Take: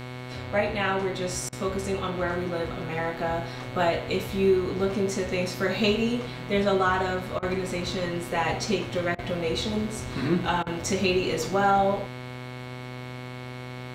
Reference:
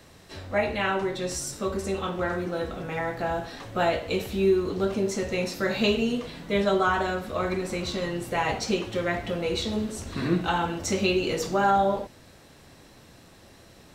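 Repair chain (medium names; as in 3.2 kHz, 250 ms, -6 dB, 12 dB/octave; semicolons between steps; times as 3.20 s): de-hum 125.3 Hz, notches 36; band-stop 2.2 kHz, Q 30; interpolate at 1.49/7.39/9.15/10.63 s, 35 ms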